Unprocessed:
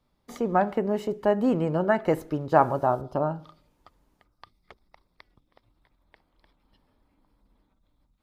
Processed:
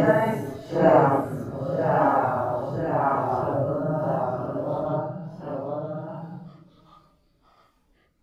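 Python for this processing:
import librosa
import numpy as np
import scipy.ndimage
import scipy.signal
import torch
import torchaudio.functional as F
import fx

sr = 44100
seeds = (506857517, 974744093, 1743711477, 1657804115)

y = fx.echo_multitap(x, sr, ms=(226, 252, 283, 466), db=(-5.0, -6.0, -19.0, -3.0))
y = fx.rotary_switch(y, sr, hz=0.7, then_hz=6.0, switch_at_s=2.35)
y = fx.paulstretch(y, sr, seeds[0], factor=4.3, window_s=0.05, from_s=2.35)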